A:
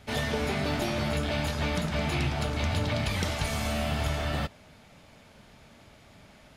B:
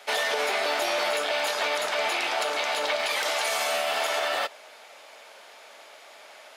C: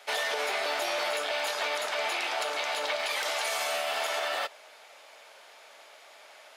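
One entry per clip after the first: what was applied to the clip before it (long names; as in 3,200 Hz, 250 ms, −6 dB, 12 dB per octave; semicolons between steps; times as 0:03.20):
wavefolder on the positive side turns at −20.5 dBFS; high-pass filter 490 Hz 24 dB per octave; brickwall limiter −26 dBFS, peak gain reduction 7 dB; level +9 dB
high-pass filter 310 Hz 6 dB per octave; level −3.5 dB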